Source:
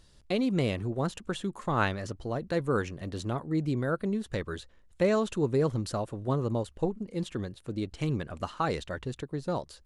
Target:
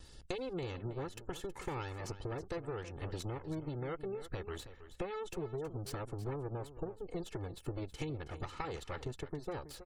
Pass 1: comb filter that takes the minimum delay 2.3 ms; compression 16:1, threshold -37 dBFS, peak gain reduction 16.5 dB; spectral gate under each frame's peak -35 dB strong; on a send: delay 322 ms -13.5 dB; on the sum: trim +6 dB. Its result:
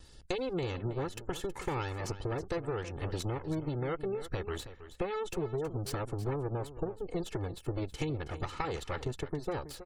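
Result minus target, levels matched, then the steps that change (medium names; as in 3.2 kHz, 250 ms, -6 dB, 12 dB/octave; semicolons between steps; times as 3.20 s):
compression: peak gain reduction -5.5 dB
change: compression 16:1, threshold -43 dBFS, peak gain reduction 22 dB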